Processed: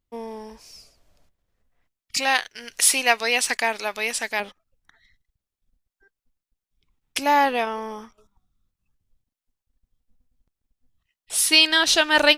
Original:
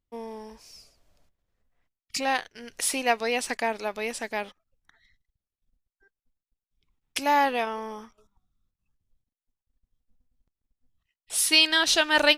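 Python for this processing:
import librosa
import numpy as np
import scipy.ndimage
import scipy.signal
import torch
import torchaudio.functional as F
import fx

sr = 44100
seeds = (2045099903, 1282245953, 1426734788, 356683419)

y = fx.tilt_shelf(x, sr, db=-6.5, hz=870.0, at=(2.17, 4.4))
y = y * 10.0 ** (3.5 / 20.0)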